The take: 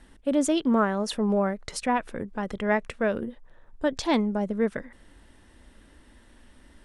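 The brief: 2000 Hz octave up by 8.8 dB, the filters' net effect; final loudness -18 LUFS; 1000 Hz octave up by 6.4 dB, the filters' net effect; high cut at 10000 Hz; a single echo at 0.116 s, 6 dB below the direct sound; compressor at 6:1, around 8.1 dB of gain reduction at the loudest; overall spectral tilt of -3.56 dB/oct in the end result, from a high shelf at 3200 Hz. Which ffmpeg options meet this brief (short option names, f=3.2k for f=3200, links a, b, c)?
-af "lowpass=10k,equalizer=f=1k:t=o:g=5.5,equalizer=f=2k:t=o:g=6.5,highshelf=f=3.2k:g=8.5,acompressor=threshold=-23dB:ratio=6,aecho=1:1:116:0.501,volume=9.5dB"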